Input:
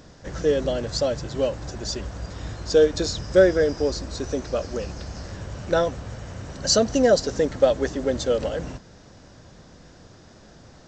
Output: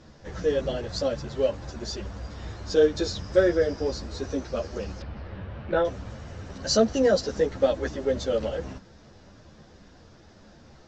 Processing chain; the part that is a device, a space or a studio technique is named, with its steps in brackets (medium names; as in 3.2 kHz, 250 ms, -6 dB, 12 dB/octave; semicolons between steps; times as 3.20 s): string-machine ensemble chorus (three-phase chorus; low-pass 5.7 kHz 12 dB/octave); 5.02–5.85 s: low-pass 3.3 kHz 24 dB/octave